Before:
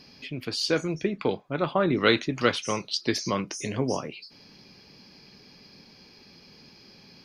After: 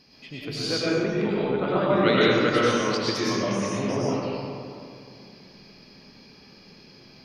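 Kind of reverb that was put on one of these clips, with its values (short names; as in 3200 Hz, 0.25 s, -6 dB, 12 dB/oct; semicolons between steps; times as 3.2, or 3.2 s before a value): digital reverb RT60 2.5 s, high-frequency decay 0.45×, pre-delay 65 ms, DRR -8 dB; gain -5.5 dB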